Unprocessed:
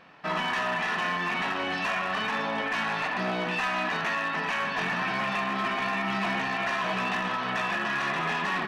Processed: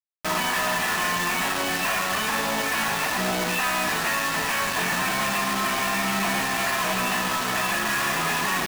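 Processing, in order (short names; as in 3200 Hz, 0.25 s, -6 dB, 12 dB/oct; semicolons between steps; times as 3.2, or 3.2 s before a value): bit-crush 5-bit; gain +3 dB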